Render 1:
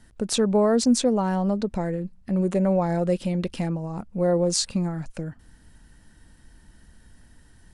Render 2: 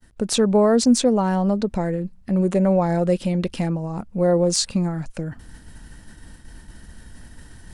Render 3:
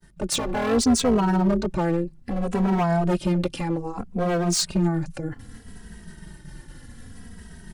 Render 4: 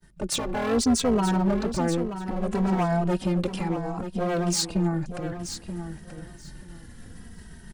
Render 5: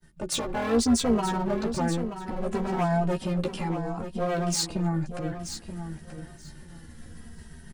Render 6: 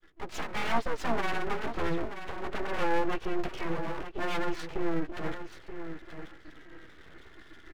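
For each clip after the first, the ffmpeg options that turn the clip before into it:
ffmpeg -i in.wav -af "deesser=0.35,agate=range=-33dB:threshold=-49dB:ratio=3:detection=peak,areverse,acompressor=mode=upward:threshold=-35dB:ratio=2.5,areverse,volume=3.5dB" out.wav
ffmpeg -i in.wav -filter_complex "[0:a]tremolo=f=170:d=0.857,volume=20dB,asoftclip=hard,volume=-20dB,asplit=2[link_01][link_02];[link_02]adelay=2.8,afreqshift=-0.64[link_03];[link_01][link_03]amix=inputs=2:normalize=1,volume=6.5dB" out.wav
ffmpeg -i in.wav -af "aecho=1:1:931|1862|2793:0.316|0.0569|0.0102,volume=-2.5dB" out.wav
ffmpeg -i in.wav -filter_complex "[0:a]asplit=2[link_01][link_02];[link_02]adelay=13,volume=-5dB[link_03];[link_01][link_03]amix=inputs=2:normalize=0,volume=-2.5dB" out.wav
ffmpeg -i in.wav -af "highpass=150,equalizer=frequency=250:width_type=q:width=4:gain=-3,equalizer=frequency=370:width_type=q:width=4:gain=-9,equalizer=frequency=540:width_type=q:width=4:gain=-4,equalizer=frequency=860:width_type=q:width=4:gain=-8,equalizer=frequency=1600:width_type=q:width=4:gain=5,lowpass=frequency=2600:width=0.5412,lowpass=frequency=2600:width=1.3066,aecho=1:1:6.3:0.41,aeval=exprs='abs(val(0))':channel_layout=same,volume=2dB" out.wav

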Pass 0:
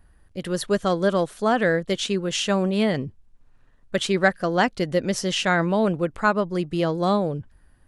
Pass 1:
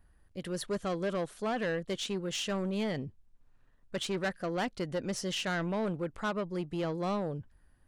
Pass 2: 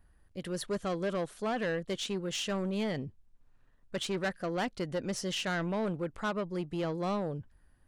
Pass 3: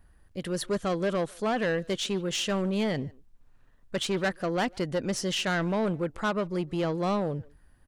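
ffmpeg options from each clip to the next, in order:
ffmpeg -i in.wav -af "asoftclip=type=tanh:threshold=-19dB,volume=-8dB" out.wav
ffmpeg -i in.wav -af anull out.wav
ffmpeg -i in.wav -filter_complex "[0:a]asplit=2[link_01][link_02];[link_02]adelay=150,highpass=300,lowpass=3400,asoftclip=type=hard:threshold=-36dB,volume=-21dB[link_03];[link_01][link_03]amix=inputs=2:normalize=0,volume=5dB" out.wav

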